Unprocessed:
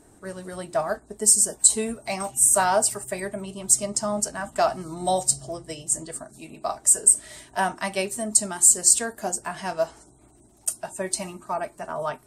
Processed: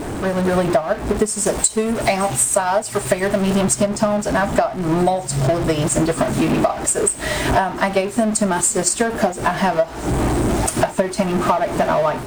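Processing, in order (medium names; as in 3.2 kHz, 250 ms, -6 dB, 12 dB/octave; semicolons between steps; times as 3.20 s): jump at every zero crossing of -25.5 dBFS; low-pass 1.6 kHz 6 dB/octave, from 1.46 s 2.9 kHz, from 3.61 s 1.5 kHz; level rider gain up to 10 dB; transient shaper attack +8 dB, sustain -3 dB; compression 12:1, threshold -20 dBFS, peak gain reduction 17.5 dB; trim +6 dB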